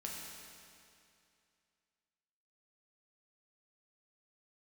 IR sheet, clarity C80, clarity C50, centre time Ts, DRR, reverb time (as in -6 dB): 1.5 dB, 0.0 dB, 121 ms, -3.0 dB, 2.5 s